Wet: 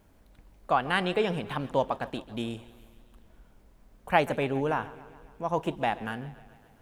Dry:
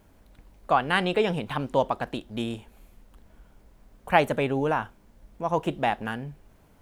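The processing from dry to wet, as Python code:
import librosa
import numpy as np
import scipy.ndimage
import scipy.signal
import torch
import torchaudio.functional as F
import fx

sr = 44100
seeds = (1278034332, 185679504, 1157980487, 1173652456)

y = fx.echo_warbled(x, sr, ms=138, feedback_pct=63, rate_hz=2.8, cents=81, wet_db=-18.5)
y = y * librosa.db_to_amplitude(-3.0)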